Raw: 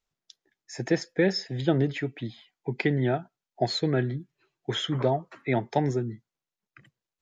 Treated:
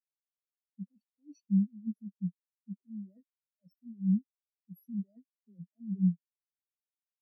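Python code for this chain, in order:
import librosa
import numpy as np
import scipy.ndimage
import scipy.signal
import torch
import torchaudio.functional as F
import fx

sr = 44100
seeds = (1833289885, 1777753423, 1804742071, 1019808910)

y = fx.bit_reversed(x, sr, seeds[0], block=32)
y = fx.over_compress(y, sr, threshold_db=-31.0, ratio=-1.0)
y = fx.leveller(y, sr, passes=2)
y = fx.env_lowpass(y, sr, base_hz=610.0, full_db=-20.0)
y = fx.pitch_keep_formants(y, sr, semitones=7.5)
y = fx.spectral_expand(y, sr, expansion=4.0)
y = F.gain(torch.from_numpy(y), -6.5).numpy()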